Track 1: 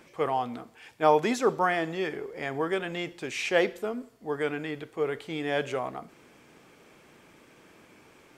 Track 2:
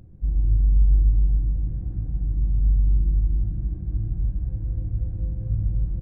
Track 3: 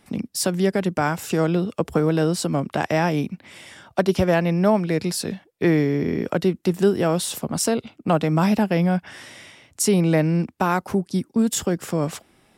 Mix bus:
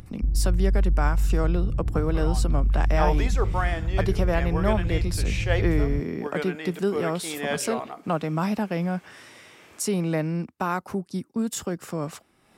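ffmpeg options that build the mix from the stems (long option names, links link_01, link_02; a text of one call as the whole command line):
ffmpeg -i stem1.wav -i stem2.wav -i stem3.wav -filter_complex "[0:a]dynaudnorm=framelen=530:gausssize=3:maxgain=12dB,lowshelf=frequency=240:gain=-12,adelay=1950,volume=-9dB[link_01];[1:a]acompressor=threshold=-21dB:ratio=4,volume=2dB[link_02];[2:a]equalizer=frequency=1200:width_type=o:width=0.59:gain=4,bandreject=frequency=3300:width=21,volume=-7dB[link_03];[link_01][link_02][link_03]amix=inputs=3:normalize=0,acompressor=mode=upward:threshold=-45dB:ratio=2.5" out.wav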